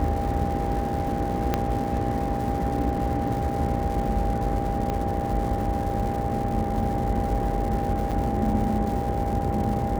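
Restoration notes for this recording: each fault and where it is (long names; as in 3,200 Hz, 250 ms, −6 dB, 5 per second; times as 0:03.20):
mains buzz 60 Hz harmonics 11 −31 dBFS
surface crackle 340 per second −33 dBFS
whistle 800 Hz −29 dBFS
0:01.54: click −9 dBFS
0:04.90: click −15 dBFS
0:08.11–0:08.12: drop-out 7 ms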